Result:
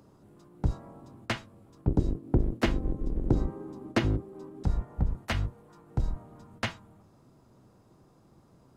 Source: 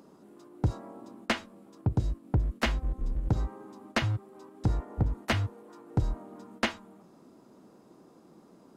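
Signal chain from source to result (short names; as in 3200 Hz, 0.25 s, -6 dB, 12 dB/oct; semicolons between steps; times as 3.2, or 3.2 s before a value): octaver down 1 oct, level +1 dB; bell 330 Hz -2 dB 1.4 oct, from 1.88 s +10.5 dB, from 4.63 s -4.5 dB; gain -3 dB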